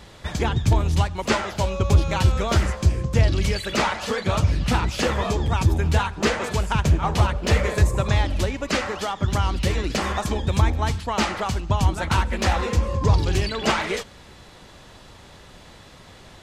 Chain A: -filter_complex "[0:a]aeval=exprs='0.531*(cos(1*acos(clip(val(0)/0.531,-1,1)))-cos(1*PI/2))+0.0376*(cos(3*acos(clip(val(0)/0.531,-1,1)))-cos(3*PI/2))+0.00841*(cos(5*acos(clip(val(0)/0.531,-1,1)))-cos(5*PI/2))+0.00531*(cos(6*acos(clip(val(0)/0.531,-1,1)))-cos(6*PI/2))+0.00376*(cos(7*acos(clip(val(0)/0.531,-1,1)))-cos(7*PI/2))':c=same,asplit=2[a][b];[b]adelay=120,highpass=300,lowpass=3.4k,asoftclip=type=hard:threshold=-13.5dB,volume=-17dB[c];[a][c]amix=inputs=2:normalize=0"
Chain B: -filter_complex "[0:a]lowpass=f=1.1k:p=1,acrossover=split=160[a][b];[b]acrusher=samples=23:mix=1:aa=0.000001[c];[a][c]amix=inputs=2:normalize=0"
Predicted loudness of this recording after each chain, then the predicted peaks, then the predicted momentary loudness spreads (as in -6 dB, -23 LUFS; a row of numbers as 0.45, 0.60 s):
-24.0, -23.5 LUFS; -5.0, -6.0 dBFS; 5, 6 LU